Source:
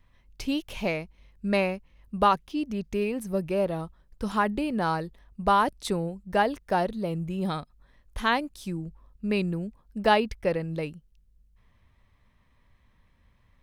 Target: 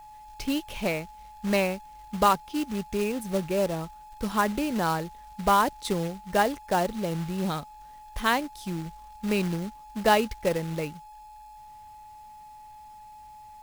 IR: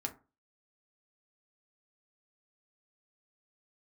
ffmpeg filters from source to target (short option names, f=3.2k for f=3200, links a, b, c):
-af "aeval=exprs='val(0)+0.00562*sin(2*PI*850*n/s)':c=same,acrusher=bits=3:mode=log:mix=0:aa=0.000001"